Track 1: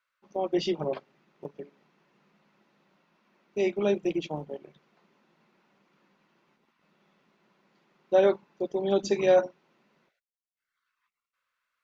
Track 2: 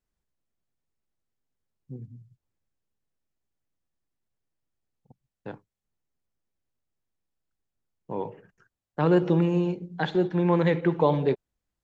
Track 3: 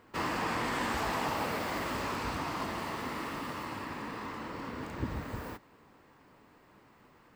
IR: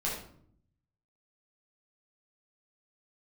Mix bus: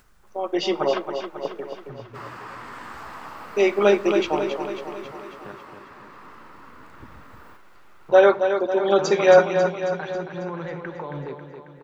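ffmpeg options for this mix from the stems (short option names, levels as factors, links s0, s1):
-filter_complex "[0:a]highpass=290,dynaudnorm=f=130:g=9:m=3.98,volume=0.631,asplit=3[s0][s1][s2];[s1]volume=0.106[s3];[s2]volume=0.447[s4];[1:a]alimiter=limit=0.112:level=0:latency=1:release=73,acompressor=mode=upward:threshold=0.0316:ratio=2.5,volume=0.398,asplit=3[s5][s6][s7];[s6]volume=0.133[s8];[s7]volume=0.447[s9];[2:a]adelay=2000,volume=0.282[s10];[3:a]atrim=start_sample=2205[s11];[s3][s8]amix=inputs=2:normalize=0[s12];[s12][s11]afir=irnorm=-1:irlink=0[s13];[s4][s9]amix=inputs=2:normalize=0,aecho=0:1:272|544|816|1088|1360|1632|1904|2176|2448:1|0.57|0.325|0.185|0.106|0.0602|0.0343|0.0195|0.0111[s14];[s0][s5][s10][s13][s14]amix=inputs=5:normalize=0,equalizer=f=1300:t=o:w=0.96:g=10"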